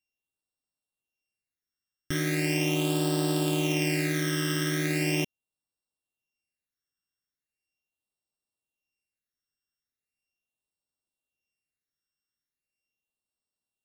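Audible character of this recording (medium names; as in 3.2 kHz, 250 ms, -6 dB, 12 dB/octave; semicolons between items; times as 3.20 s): a buzz of ramps at a fixed pitch in blocks of 16 samples; phasing stages 12, 0.39 Hz, lowest notch 770–2200 Hz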